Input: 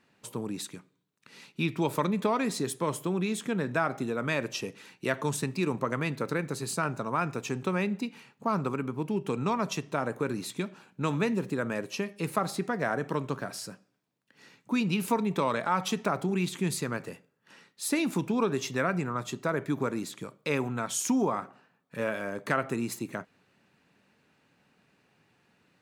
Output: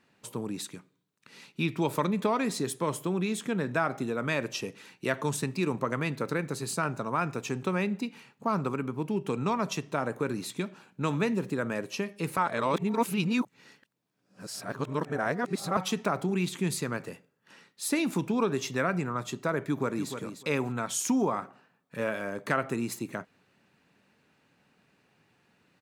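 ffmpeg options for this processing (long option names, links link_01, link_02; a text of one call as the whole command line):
ffmpeg -i in.wav -filter_complex "[0:a]asplit=2[link_01][link_02];[link_02]afade=type=in:start_time=19.59:duration=0.01,afade=type=out:start_time=20.12:duration=0.01,aecho=0:1:300|600:0.375837|0.0563756[link_03];[link_01][link_03]amix=inputs=2:normalize=0,asplit=3[link_04][link_05][link_06];[link_04]atrim=end=12.372[link_07];[link_05]atrim=start=12.368:end=15.772,asetpts=PTS-STARTPTS,areverse[link_08];[link_06]atrim=start=15.768[link_09];[link_07][link_08]acrossfade=duration=0.004:curve1=hsin:curve2=hsin[link_10];[link_10][link_09]acrossfade=duration=0.004:curve1=hsin:curve2=hsin" out.wav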